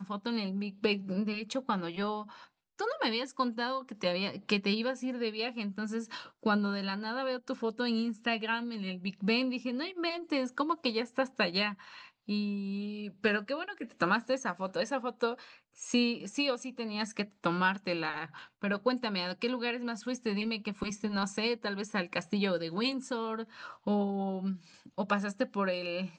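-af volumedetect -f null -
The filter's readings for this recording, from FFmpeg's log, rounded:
mean_volume: -33.5 dB
max_volume: -13.9 dB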